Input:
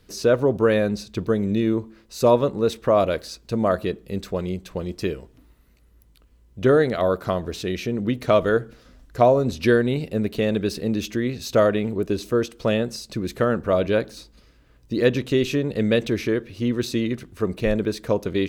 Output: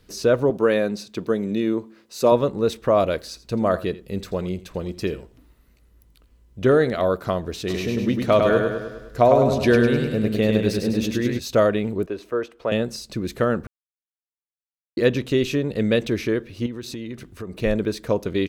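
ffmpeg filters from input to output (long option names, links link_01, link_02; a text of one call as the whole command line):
ffmpeg -i in.wav -filter_complex "[0:a]asettb=1/sr,asplit=3[link_01][link_02][link_03];[link_01]atrim=end=0.504[link_04];[link_02]atrim=start=0.5:end=2.32,asetpts=PTS-STARTPTS,afade=type=in:duration=0.004:curve=qsin,afade=type=out:start_time=1.816:duration=0.004:curve=qsin,highpass=190[link_05];[link_03]atrim=start=2.316[link_06];[link_04][link_05]acrossfade=duration=0.004:curve1=hsin:curve2=qsin[link_07];[link_07][link_06]acrossfade=duration=0.004:curve1=qsin:curve2=hsin,asettb=1/sr,asplit=3[link_08][link_09][link_10];[link_08]atrim=end=3.194[link_11];[link_09]atrim=start=3.19:end=7.05,asetpts=PTS-STARTPTS,afade=type=in:duration=0.004:curve=qsin,afade=type=out:start_time=3.856:duration=0.004:curve=qsin,aecho=1:1:84:0.141,atrim=end_sample=170226[link_12];[link_10]atrim=start=7.046[link_13];[link_11][link_12]acrossfade=duration=0.004:curve1=hsin:curve2=qsin[link_14];[link_14][link_13]acrossfade=duration=0.004:curve1=qsin:curve2=hsin,asplit=3[link_15][link_16][link_17];[link_15]afade=type=out:start_time=7.67:duration=0.02[link_18];[link_16]aecho=1:1:102|204|306|408|510|612|714:0.631|0.347|0.191|0.105|0.0577|0.0318|0.0175,afade=type=in:start_time=7.67:duration=0.02,afade=type=out:start_time=11.38:duration=0.02[link_19];[link_17]afade=type=in:start_time=11.38:duration=0.02[link_20];[link_18][link_19][link_20]amix=inputs=3:normalize=0,asettb=1/sr,asplit=3[link_21][link_22][link_23];[link_21]atrim=end=12.064[link_24];[link_22]atrim=start=12.06:end=12.72,asetpts=PTS-STARTPTS,afade=type=in:duration=0.004:curve=qsin,afade=type=out:start_time=0.656:duration=0.004:curve=qsin,acrossover=split=380 2500:gain=0.2 1 0.178[link_25][link_26][link_27];[link_25][link_26][link_27]amix=inputs=3:normalize=0[link_28];[link_23]atrim=start=12.716[link_29];[link_24][link_28]acrossfade=duration=0.004:curve1=hsin:curve2=qsin[link_30];[link_30][link_29]acrossfade=duration=0.004:curve1=qsin:curve2=hsin,asettb=1/sr,asplit=3[link_31][link_32][link_33];[link_31]atrim=end=16.664[link_34];[link_32]atrim=start=16.66:end=17.56,asetpts=PTS-STARTPTS,afade=type=in:duration=0.004:curve=qsin,afade=type=out:start_time=0.896:duration=0.004:curve=qsin,acompressor=threshold=-30dB:ratio=4:attack=3.2:release=140:knee=1:detection=peak[link_35];[link_33]atrim=start=17.556[link_36];[link_34][link_35]acrossfade=duration=0.004:curve1=hsin:curve2=qsin[link_37];[link_37][link_36]acrossfade=duration=0.004:curve1=qsin:curve2=hsin,asplit=3[link_38][link_39][link_40];[link_38]atrim=end=13.67,asetpts=PTS-STARTPTS,afade=type=out:start_time=13.666:duration=0.004:curve=hsin[link_41];[link_39]atrim=start=13.67:end=14.97,asetpts=PTS-STARTPTS,volume=0[link_42];[link_40]atrim=start=14.97,asetpts=PTS-STARTPTS,afade=type=in:duration=0.004:curve=hsin[link_43];[link_41][link_42][link_43]concat=n=3:v=0:a=1" out.wav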